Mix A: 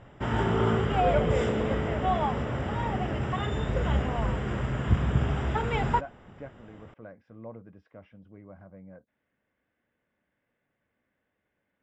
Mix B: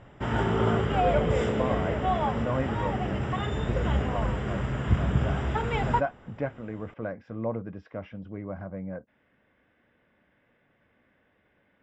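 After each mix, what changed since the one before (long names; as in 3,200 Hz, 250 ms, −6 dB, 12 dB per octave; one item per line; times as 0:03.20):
speech +12.0 dB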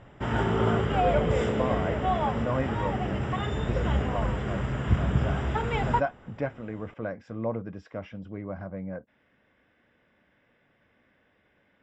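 speech: remove high-frequency loss of the air 160 metres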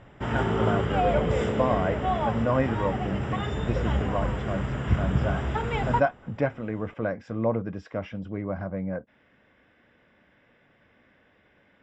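speech +5.0 dB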